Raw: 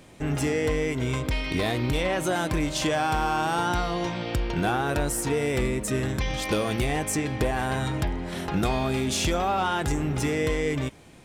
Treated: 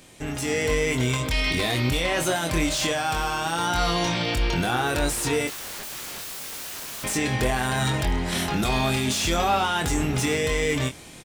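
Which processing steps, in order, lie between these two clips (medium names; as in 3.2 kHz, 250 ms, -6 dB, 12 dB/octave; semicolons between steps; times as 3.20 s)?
treble shelf 2.4 kHz +11 dB; peak limiter -19 dBFS, peak gain reduction 10.5 dB; level rider gain up to 7 dB; 5.47–7.04 s: integer overflow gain 28 dB; doubling 24 ms -6.5 dB; slew-rate limiter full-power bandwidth 530 Hz; trim -3.5 dB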